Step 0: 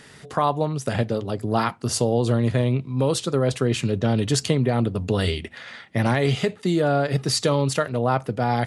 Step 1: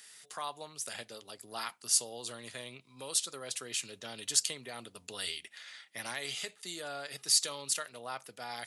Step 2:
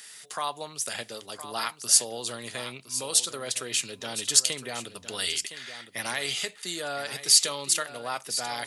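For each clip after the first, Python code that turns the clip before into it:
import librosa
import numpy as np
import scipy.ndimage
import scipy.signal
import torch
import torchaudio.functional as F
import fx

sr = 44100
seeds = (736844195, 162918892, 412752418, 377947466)

y1 = np.diff(x, prepend=0.0)
y2 = y1 + 10.0 ** (-12.0 / 20.0) * np.pad(y1, (int(1013 * sr / 1000.0), 0))[:len(y1)]
y2 = y2 * librosa.db_to_amplitude(8.0)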